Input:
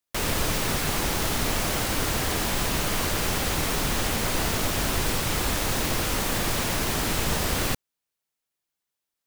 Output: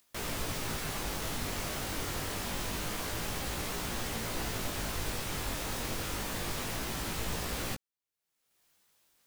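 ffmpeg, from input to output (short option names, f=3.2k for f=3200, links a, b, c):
-af "acompressor=mode=upward:threshold=-39dB:ratio=2.5,flanger=delay=17:depth=4.4:speed=0.26,volume=-7dB"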